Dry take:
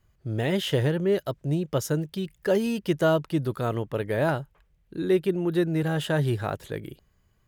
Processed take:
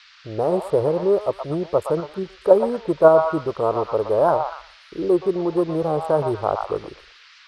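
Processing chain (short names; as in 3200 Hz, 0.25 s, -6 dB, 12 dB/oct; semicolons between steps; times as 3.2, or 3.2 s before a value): Wiener smoothing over 25 samples; elliptic band-stop 1200–8800 Hz; gate with hold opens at -54 dBFS; graphic EQ 125/250/500/1000/8000 Hz -12/-8/+6/+5/+5 dB; in parallel at -1.5 dB: level quantiser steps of 17 dB; on the sum: band noise 1200–5000 Hz -53 dBFS; air absorption 56 m; on a send: delay with a stepping band-pass 0.119 s, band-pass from 1000 Hz, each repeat 0.7 oct, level -2.5 dB; on the sum: record warp 78 rpm, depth 100 cents; gain +4 dB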